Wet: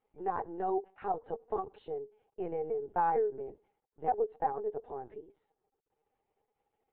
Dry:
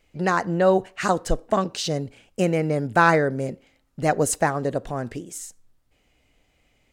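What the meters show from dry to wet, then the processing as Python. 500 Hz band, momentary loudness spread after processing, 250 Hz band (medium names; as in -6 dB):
-11.5 dB, 14 LU, -19.0 dB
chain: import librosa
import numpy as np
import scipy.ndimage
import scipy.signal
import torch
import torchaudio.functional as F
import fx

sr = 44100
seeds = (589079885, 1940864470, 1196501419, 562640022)

y = fx.quant_dither(x, sr, seeds[0], bits=10, dither='none')
y = fx.double_bandpass(y, sr, hz=590.0, octaves=0.84)
y = fx.lpc_vocoder(y, sr, seeds[1], excitation='pitch_kept', order=16)
y = F.gain(torch.from_numpy(y), -4.0).numpy()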